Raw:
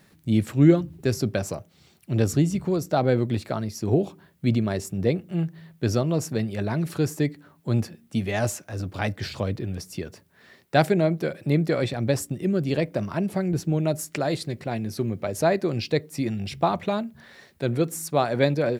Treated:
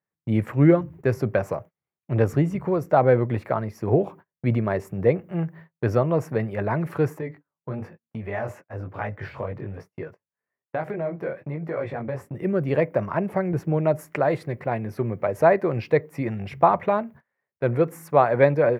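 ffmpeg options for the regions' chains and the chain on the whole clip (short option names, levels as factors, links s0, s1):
-filter_complex "[0:a]asettb=1/sr,asplit=3[s0][s1][s2];[s0]atrim=end=7.184[s3];[s1]atrim=start=7.18:end=12.35,asetpts=PTS-STARTPTS,afade=t=in:d=0.004:c=qsin,afade=t=out:st=5.166:d=0.004:c=qsin,equalizer=f=12000:t=o:w=1.8:g=-7.5,flanger=delay=18:depth=4.7:speed=1.1,acompressor=threshold=0.0447:ratio=6:attack=3.2:release=140:knee=1:detection=peak[s4];[s2]atrim=start=12.346[s5];[s3][s4]acrossfade=d=0.004:c1=hsin:c2=qsin[s6];[s6][s5]acrossfade=d=0.004:c1=qsin:c2=hsin,agate=range=0.0178:threshold=0.00794:ratio=16:detection=peak,equalizer=f=125:t=o:w=1:g=7,equalizer=f=500:t=o:w=1:g=9,equalizer=f=1000:t=o:w=1:g=11,equalizer=f=2000:t=o:w=1:g=10,equalizer=f=4000:t=o:w=1:g=-10,equalizer=f=8000:t=o:w=1:g=-9,volume=0.501"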